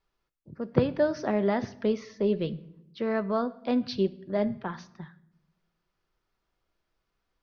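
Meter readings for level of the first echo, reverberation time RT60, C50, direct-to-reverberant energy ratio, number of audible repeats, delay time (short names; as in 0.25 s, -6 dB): none, 0.80 s, 18.0 dB, 11.5 dB, none, none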